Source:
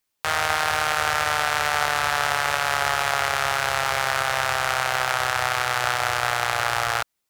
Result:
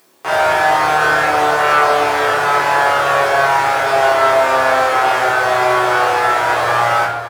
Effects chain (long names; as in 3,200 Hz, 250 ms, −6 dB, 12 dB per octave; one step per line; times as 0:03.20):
soft clipping −6.5 dBFS, distortion −21 dB
high-pass filter 280 Hz 12 dB per octave
tilt shelving filter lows +8.5 dB
double-tracking delay 27 ms −3 dB
on a send: single-tap delay 568 ms −13 dB
on the sum: rectangular room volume 170 cubic metres, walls mixed, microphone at 3.7 metres
upward compression, threshold −34 dBFS
level −2.5 dB